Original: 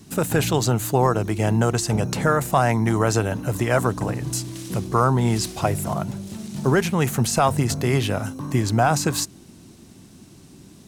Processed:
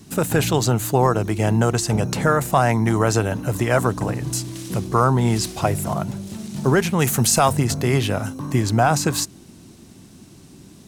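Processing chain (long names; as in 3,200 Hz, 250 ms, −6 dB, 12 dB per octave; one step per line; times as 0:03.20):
0:06.99–0:07.53: high-shelf EQ 4,300 Hz +8 dB
level +1.5 dB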